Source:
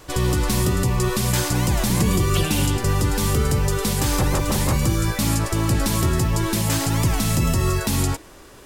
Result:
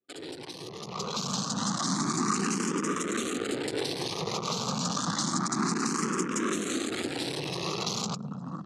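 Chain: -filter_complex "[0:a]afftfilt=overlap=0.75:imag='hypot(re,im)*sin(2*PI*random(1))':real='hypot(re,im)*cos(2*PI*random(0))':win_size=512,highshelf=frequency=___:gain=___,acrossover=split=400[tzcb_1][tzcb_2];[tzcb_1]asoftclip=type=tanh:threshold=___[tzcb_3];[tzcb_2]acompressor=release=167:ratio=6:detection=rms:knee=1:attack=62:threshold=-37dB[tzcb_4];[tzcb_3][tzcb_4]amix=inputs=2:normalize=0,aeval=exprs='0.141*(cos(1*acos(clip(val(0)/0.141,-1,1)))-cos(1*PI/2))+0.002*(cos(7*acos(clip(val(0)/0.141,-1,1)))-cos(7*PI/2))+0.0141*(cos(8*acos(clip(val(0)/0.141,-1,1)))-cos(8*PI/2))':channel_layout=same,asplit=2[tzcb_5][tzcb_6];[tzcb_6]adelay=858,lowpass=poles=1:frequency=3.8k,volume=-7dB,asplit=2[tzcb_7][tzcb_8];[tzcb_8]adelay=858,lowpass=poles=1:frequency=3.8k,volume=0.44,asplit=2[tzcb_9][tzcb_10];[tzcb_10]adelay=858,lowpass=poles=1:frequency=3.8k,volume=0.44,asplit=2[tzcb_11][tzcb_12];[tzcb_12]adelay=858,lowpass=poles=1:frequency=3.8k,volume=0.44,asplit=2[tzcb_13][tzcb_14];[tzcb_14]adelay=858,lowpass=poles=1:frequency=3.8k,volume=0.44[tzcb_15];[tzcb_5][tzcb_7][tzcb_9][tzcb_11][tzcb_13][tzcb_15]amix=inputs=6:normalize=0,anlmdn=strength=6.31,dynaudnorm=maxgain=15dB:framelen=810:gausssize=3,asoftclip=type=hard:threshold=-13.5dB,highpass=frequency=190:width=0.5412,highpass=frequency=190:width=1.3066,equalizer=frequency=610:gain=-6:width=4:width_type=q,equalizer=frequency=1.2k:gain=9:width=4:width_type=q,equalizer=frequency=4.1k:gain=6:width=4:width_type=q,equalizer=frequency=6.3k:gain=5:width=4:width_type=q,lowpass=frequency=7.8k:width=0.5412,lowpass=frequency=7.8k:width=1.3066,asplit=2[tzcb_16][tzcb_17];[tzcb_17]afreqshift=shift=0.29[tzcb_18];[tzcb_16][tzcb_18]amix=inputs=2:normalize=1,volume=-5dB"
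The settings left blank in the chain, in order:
3.6k, 8.5, -22.5dB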